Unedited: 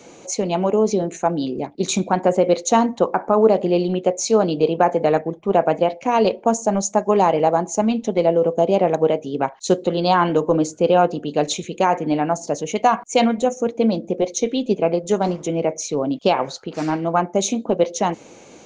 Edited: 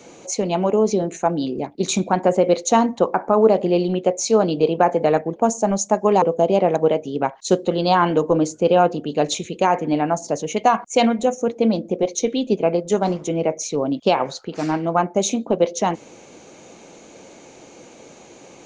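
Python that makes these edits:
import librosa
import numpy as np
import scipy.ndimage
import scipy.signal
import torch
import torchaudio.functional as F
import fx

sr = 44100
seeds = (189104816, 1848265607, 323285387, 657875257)

y = fx.edit(x, sr, fx.cut(start_s=5.36, length_s=1.04),
    fx.cut(start_s=7.26, length_s=1.15), tone=tone)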